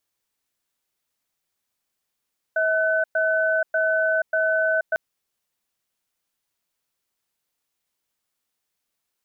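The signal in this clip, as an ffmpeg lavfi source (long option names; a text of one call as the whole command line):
ffmpeg -f lavfi -i "aevalsrc='0.0891*(sin(2*PI*642*t)+sin(2*PI*1510*t))*clip(min(mod(t,0.59),0.48-mod(t,0.59))/0.005,0,1)':duration=2.4:sample_rate=44100" out.wav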